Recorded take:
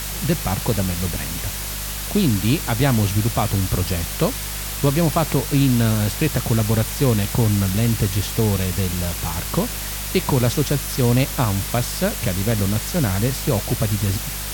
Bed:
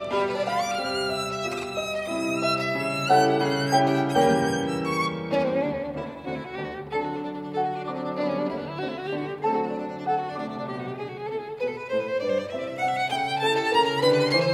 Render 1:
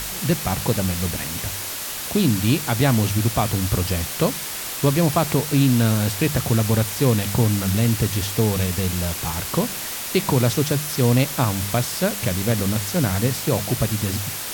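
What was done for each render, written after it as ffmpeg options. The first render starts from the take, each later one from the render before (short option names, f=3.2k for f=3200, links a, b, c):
-af "bandreject=f=50:t=h:w=4,bandreject=f=100:t=h:w=4,bandreject=f=150:t=h:w=4,bandreject=f=200:t=h:w=4"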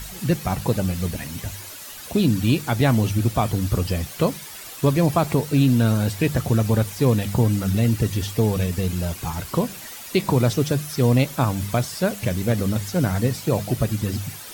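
-af "afftdn=nr=11:nf=-30"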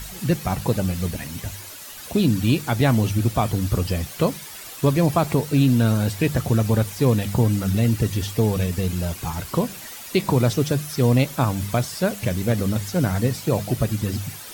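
-filter_complex "[0:a]asettb=1/sr,asplit=3[a][b][c];[a]atrim=end=1.104[d];[b]atrim=start=1.1:end=1.97,asetpts=PTS-STARTPTS,afade=t=in:d=0.004:c=qsin,afade=t=out:st=0.866:d=0.004:c=qsin,aeval=exprs='sgn(val(0))*max(abs(val(0))-0.00133,0)':c=same[e];[c]atrim=start=1.966[f];[d][e]acrossfade=d=0.004:c1=hsin:c2=qsin[g];[g][f]acrossfade=d=0.004:c1=qsin:c2=hsin"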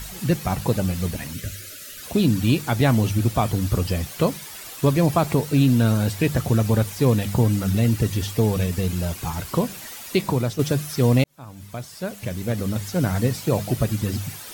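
-filter_complex "[0:a]asettb=1/sr,asplit=3[a][b][c];[a]atrim=end=1.334[d];[b]atrim=start=1.33:end=2.03,asetpts=PTS-STARTPTS,afade=t=in:d=0.004:c=qsin,afade=t=out:st=0.696:d=0.004:c=qsin,asuperstop=centerf=880:order=12:qfactor=1.5[e];[c]atrim=start=2.026[f];[d][e]acrossfade=d=0.004:c1=hsin:c2=qsin[g];[g][f]acrossfade=d=0.004:c1=qsin:c2=hsin,asplit=3[h][i][j];[h]atrim=end=10.59,asetpts=PTS-STARTPTS,afade=t=out:st=10.13:d=0.46:silence=0.375837[k];[i]atrim=start=10.59:end=11.24,asetpts=PTS-STARTPTS,afade=t=in:d=0.004:c=hsin:silence=0.375837,afade=t=out:st=0.646:d=0.004:c=hsin[l];[j]atrim=start=11.24,asetpts=PTS-STARTPTS,afade=t=in:d=1.96[m];[k][l][m]concat=n=3:v=0:a=1"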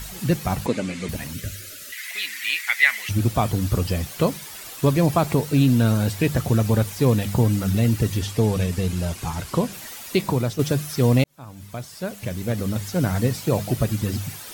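-filter_complex "[0:a]asettb=1/sr,asplit=3[a][b][c];[a]atrim=end=0.664[d];[b]atrim=start=0.66:end=1.09,asetpts=PTS-STARTPTS,afade=t=in:d=0.004:c=qsin,afade=t=out:st=0.426:d=0.004:c=qsin,highpass=230,equalizer=f=260:t=q:w=4:g=7,equalizer=f=770:t=q:w=4:g=-6,equalizer=f=2.2k:t=q:w=4:g=10,equalizer=f=5.4k:t=q:w=4:g=-4,lowpass=f=8.3k:w=0.5412,lowpass=f=8.3k:w=1.3066[e];[c]atrim=start=1.086[f];[d][e]acrossfade=d=0.004:c1=hsin:c2=qsin[g];[g][f]acrossfade=d=0.004:c1=qsin:c2=hsin,asettb=1/sr,asplit=3[h][i][j];[h]atrim=end=1.924[k];[i]atrim=start=1.92:end=3.09,asetpts=PTS-STARTPTS,afade=t=in:d=0.004:c=qsin,afade=t=out:st=1.166:d=0.004:c=qsin,highpass=f=2k:t=q:w=11[l];[j]atrim=start=3.086[m];[k][l]acrossfade=d=0.004:c1=hsin:c2=qsin[n];[n][m]acrossfade=d=0.004:c1=qsin:c2=hsin,asettb=1/sr,asplit=3[o][p][q];[o]atrim=end=8.194[r];[p]atrim=start=8.19:end=9.73,asetpts=PTS-STARTPTS,afade=t=in:d=0.004:c=qsin,afade=t=out:st=1.536:d=0.004:c=qsin,lowpass=12k[s];[q]atrim=start=9.726[t];[r][s]acrossfade=d=0.004:c1=hsin:c2=qsin[u];[u][t]acrossfade=d=0.004:c1=qsin:c2=hsin"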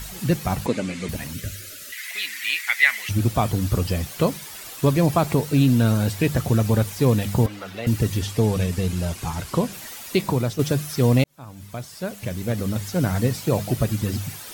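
-filter_complex "[0:a]asettb=1/sr,asplit=3[a][b][c];[a]atrim=end=7.464[d];[b]atrim=start=7.46:end=7.87,asetpts=PTS-STARTPTS,afade=t=in:d=0.004:c=qsin,afade=t=out:st=0.406:d=0.004:c=qsin,acrossover=split=410 4200:gain=0.0891 1 0.158[e][f][g];[e][f][g]amix=inputs=3:normalize=0[h];[c]atrim=start=7.866[i];[d][h]acrossfade=d=0.004:c1=hsin:c2=qsin[j];[j][i]acrossfade=d=0.004:c1=qsin:c2=hsin"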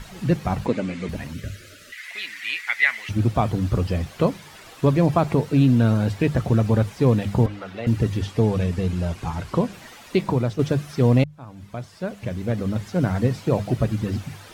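-af "aemphasis=mode=reproduction:type=75fm,bandreject=f=50:t=h:w=6,bandreject=f=100:t=h:w=6,bandreject=f=150:t=h:w=6"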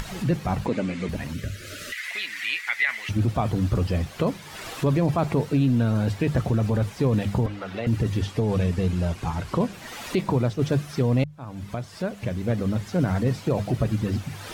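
-af "alimiter=limit=-14dB:level=0:latency=1:release=11,acompressor=mode=upward:threshold=-26dB:ratio=2.5"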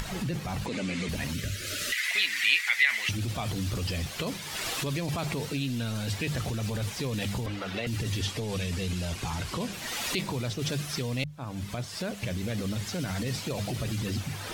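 -filter_complex "[0:a]acrossover=split=2400[a][b];[a]alimiter=level_in=1.5dB:limit=-24dB:level=0:latency=1:release=20,volume=-1.5dB[c];[b]dynaudnorm=f=240:g=5:m=7dB[d];[c][d]amix=inputs=2:normalize=0"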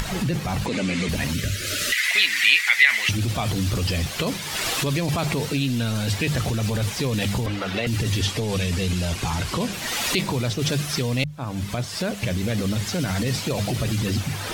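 -af "volume=7.5dB,alimiter=limit=-3dB:level=0:latency=1"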